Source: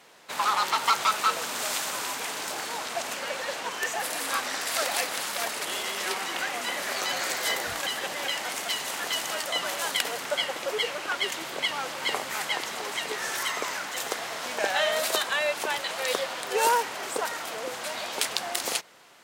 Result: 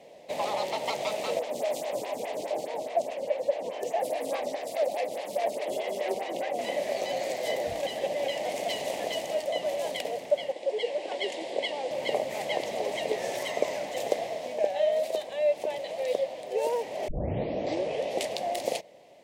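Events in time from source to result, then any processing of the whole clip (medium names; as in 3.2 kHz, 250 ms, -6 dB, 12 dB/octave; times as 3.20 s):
1.39–6.59 s: lamp-driven phase shifter 4.8 Hz
10.52–11.91 s: cabinet simulation 320–9100 Hz, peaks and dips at 620 Hz -5 dB, 1.3 kHz -9 dB, 2.4 kHz -3 dB, 6.2 kHz -5 dB
17.08 s: tape start 1.24 s
whole clip: FFT filter 400 Hz 0 dB, 600 Hz +10 dB, 1.4 kHz -27 dB, 2 kHz -8 dB, 13 kHz -15 dB; gain riding within 5 dB 0.5 s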